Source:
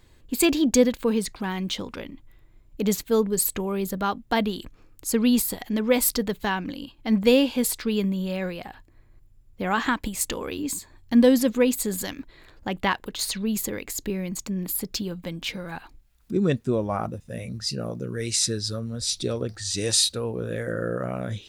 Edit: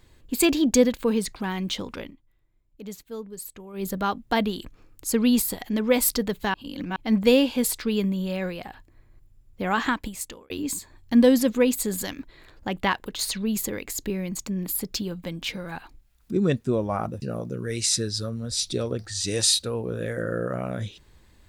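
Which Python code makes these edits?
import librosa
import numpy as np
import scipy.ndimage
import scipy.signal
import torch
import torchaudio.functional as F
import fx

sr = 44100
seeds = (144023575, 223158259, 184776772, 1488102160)

y = fx.edit(x, sr, fx.fade_down_up(start_s=2.04, length_s=1.82, db=-14.5, fade_s=0.13),
    fx.reverse_span(start_s=6.54, length_s=0.42),
    fx.fade_out_span(start_s=9.86, length_s=0.64),
    fx.cut(start_s=17.22, length_s=0.5), tone=tone)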